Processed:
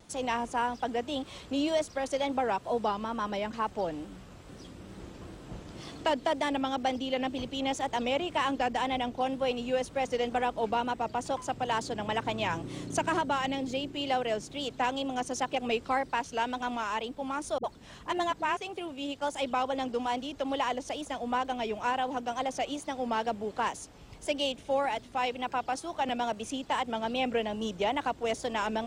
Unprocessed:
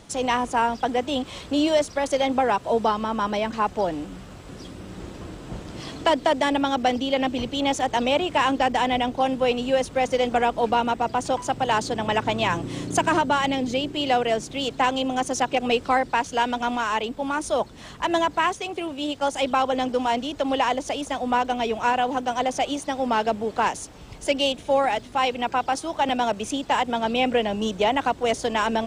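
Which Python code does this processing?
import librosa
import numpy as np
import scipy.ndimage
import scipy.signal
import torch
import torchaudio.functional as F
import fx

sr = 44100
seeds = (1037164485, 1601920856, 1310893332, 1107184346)

y = fx.wow_flutter(x, sr, seeds[0], rate_hz=2.1, depth_cents=72.0)
y = fx.dispersion(y, sr, late='highs', ms=60.0, hz=300.0, at=(17.58, 18.57))
y = y * librosa.db_to_amplitude(-8.0)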